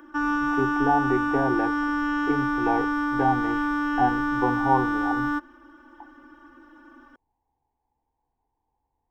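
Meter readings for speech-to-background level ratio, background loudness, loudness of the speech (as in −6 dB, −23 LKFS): −2.5 dB, −25.5 LKFS, −28.0 LKFS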